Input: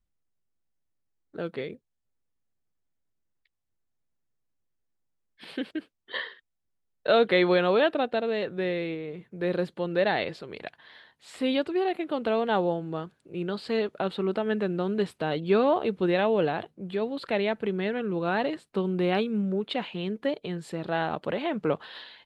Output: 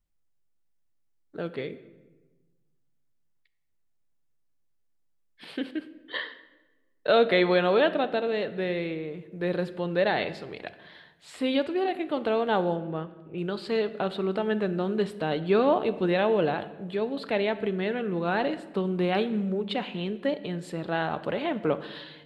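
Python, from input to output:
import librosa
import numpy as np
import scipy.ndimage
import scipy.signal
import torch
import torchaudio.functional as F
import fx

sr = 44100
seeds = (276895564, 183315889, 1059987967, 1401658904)

y = fx.lowpass(x, sr, hz=3300.0, slope=24, at=(12.76, 13.38))
y = fx.room_shoebox(y, sr, seeds[0], volume_m3=780.0, walls='mixed', distance_m=0.38)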